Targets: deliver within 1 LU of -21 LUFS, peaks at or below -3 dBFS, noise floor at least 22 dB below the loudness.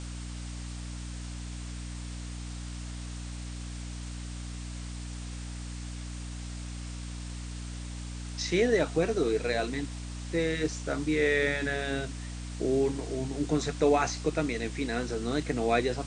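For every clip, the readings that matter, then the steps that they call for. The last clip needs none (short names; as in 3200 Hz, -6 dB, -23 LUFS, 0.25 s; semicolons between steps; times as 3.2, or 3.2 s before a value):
hum 60 Hz; harmonics up to 300 Hz; hum level -36 dBFS; noise floor -39 dBFS; noise floor target -54 dBFS; loudness -32.0 LUFS; peak -12.5 dBFS; loudness target -21.0 LUFS
-> de-hum 60 Hz, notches 5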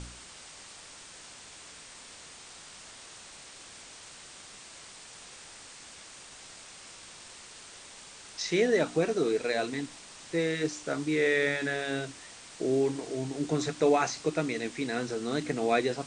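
hum none; noise floor -49 dBFS; noise floor target -52 dBFS
-> noise print and reduce 6 dB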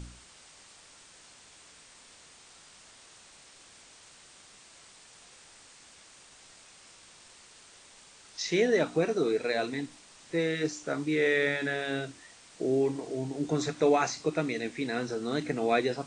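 noise floor -55 dBFS; loudness -29.5 LUFS; peak -13.0 dBFS; loudness target -21.0 LUFS
-> gain +8.5 dB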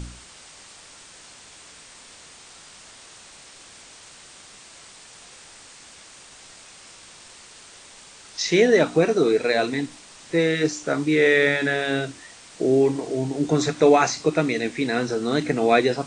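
loudness -21.0 LUFS; peak -4.5 dBFS; noise floor -47 dBFS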